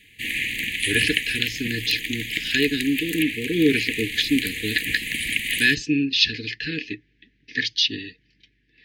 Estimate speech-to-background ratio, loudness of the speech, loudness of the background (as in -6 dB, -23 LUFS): 2.5 dB, -23.5 LUFS, -26.0 LUFS